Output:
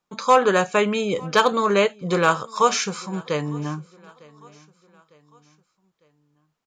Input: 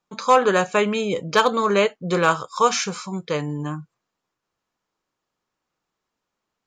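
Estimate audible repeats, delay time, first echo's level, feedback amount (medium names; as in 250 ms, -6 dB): 2, 903 ms, -24.0 dB, 45%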